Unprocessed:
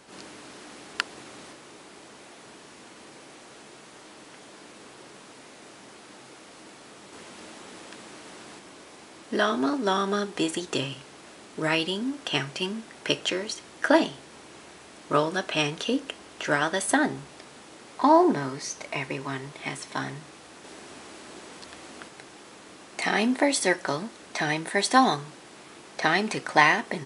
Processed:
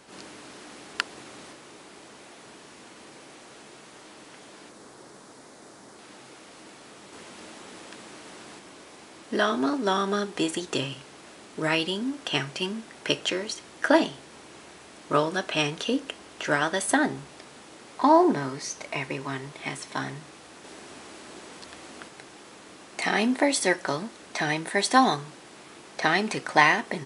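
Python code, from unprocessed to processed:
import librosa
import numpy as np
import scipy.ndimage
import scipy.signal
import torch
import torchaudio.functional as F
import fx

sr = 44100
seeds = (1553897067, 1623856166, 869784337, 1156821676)

y = fx.peak_eq(x, sr, hz=2700.0, db=-8.5, octaves=0.87, at=(4.69, 5.99))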